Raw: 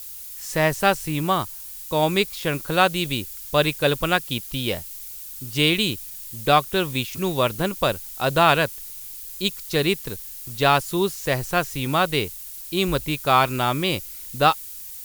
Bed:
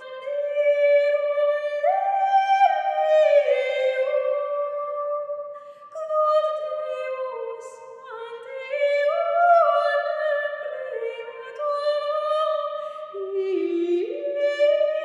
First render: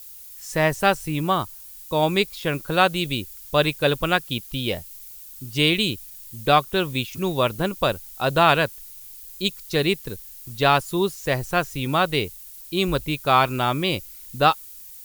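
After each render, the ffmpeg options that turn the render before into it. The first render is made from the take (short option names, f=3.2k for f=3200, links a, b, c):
-af "afftdn=nr=6:nf=-37"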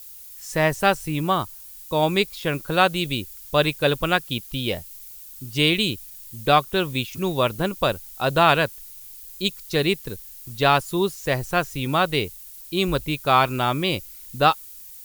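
-af anull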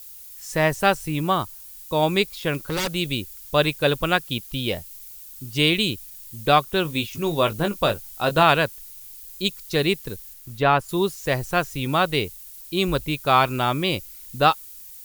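-filter_complex "[0:a]asettb=1/sr,asplit=3[a][b][c];[a]atrim=end=2.544[d];[b]atrim=start=2.54:end=2.94,asetpts=PTS-STARTPTS,afade=t=in:d=0.004:c=qsin,afade=t=out:st=0.396:d=0.004:c=qsin,aeval=exprs='0.112*(abs(mod(val(0)/0.112+3,4)-2)-1)':c=same[e];[c]atrim=start=2.936[f];[d][e]acrossfade=d=0.004:c1=hsin:c2=qsin[g];[g][f]acrossfade=d=0.004:c1=qsin:c2=hsin,asettb=1/sr,asplit=3[h][i][j];[h]atrim=end=6.834[k];[i]atrim=start=6.83:end=8.43,asetpts=PTS-STARTPTS,afade=t=in:d=0.004:c=qsin,afade=t=out:st=1.596:d=0.004:c=qsin,asplit=2[l][m];[m]adelay=19,volume=-8dB[n];[l][n]amix=inputs=2:normalize=0,atrim=end_sample=70560[o];[j]atrim=start=8.426[p];[k][o]acrossfade=d=0.004:c1=hsin:c2=qsin[q];[q][p]acrossfade=d=0.004:c1=qsin:c2=hsin,asettb=1/sr,asplit=3[r][s][t];[r]atrim=end=10.334[u];[s]atrim=start=10.33:end=10.89,asetpts=PTS-STARTPTS,afade=t=in:d=0.004:c=qsin,afade=t=out:st=0.556:d=0.004:c=qsin,acrossover=split=2700[v][w];[w]acompressor=threshold=-40dB:ratio=4:attack=1:release=60[x];[v][x]amix=inputs=2:normalize=0[y];[t]atrim=start=10.886[z];[u][y]acrossfade=d=0.004:c1=hsin:c2=qsin[aa];[aa][z]acrossfade=d=0.004:c1=qsin:c2=hsin"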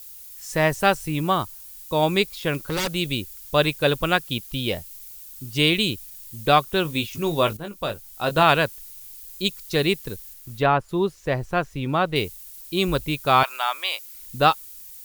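-filter_complex "[0:a]asettb=1/sr,asplit=3[a][b][c];[a]atrim=end=10.664[d];[b]atrim=start=10.66:end=12.16,asetpts=PTS-STARTPTS,afade=t=in:d=0.004:c=qsin,afade=t=out:st=1.496:d=0.004:c=qsin,lowpass=f=1.7k:p=1[e];[c]atrim=start=12.156[f];[d][e]acrossfade=d=0.004:c1=hsin:c2=qsin[g];[g][f]acrossfade=d=0.004:c1=qsin:c2=hsin,asettb=1/sr,asplit=3[h][i][j];[h]atrim=end=13.434[k];[i]atrim=start=13.43:end=14.15,asetpts=PTS-STARTPTS,afade=t=in:d=0.004:c=qsin,afade=t=out:st=0.716:d=0.004:c=qsin,highpass=f=740:w=0.5412,highpass=f=740:w=1.3066[l];[j]atrim=start=14.146[m];[k][l]acrossfade=d=0.004:c1=hsin:c2=qsin[n];[n][m]acrossfade=d=0.004:c1=qsin:c2=hsin,asplit=2[o][p];[o]atrim=end=7.57,asetpts=PTS-STARTPTS,afade=t=out:st=7.566:d=0.004:c=hsin:silence=0.223872[q];[p]atrim=start=7.57,asetpts=PTS-STARTPTS,afade=t=in:d=0.94:silence=0.223872[r];[q][r]concat=n=2:v=0:a=1"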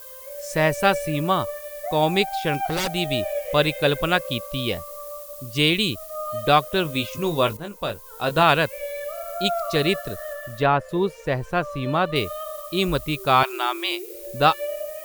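-filter_complex "[1:a]volume=-10.5dB[a];[0:a][a]amix=inputs=2:normalize=0"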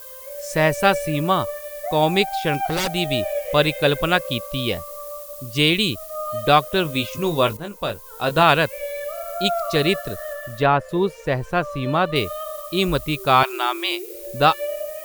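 -af "volume=2dB,alimiter=limit=-2dB:level=0:latency=1"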